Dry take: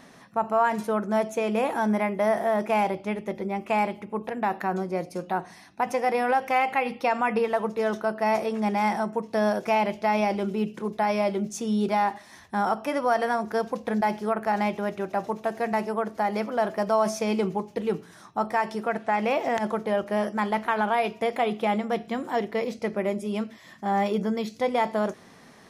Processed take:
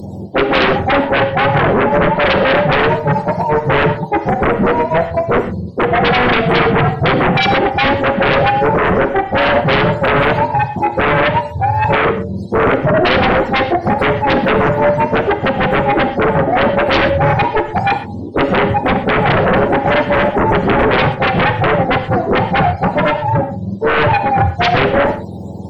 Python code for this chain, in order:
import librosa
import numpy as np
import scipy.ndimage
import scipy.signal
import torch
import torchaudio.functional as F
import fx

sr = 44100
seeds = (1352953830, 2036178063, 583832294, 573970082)

p1 = fx.octave_mirror(x, sr, pivot_hz=600.0)
p2 = scipy.signal.sosfilt(scipy.signal.ellip(3, 1.0, 40, [860.0, 4100.0], 'bandstop', fs=sr, output='sos'), p1)
p3 = fx.peak_eq(p2, sr, hz=4700.0, db=-4.0, octaves=0.23)
p4 = fx.fold_sine(p3, sr, drive_db=18, ceiling_db=-11.5)
p5 = p3 + F.gain(torch.from_numpy(p4), -4.5).numpy()
p6 = fx.rev_gated(p5, sr, seeds[0], gate_ms=150, shape='flat', drr_db=9.0)
y = F.gain(torch.from_numpy(p6), 5.5).numpy()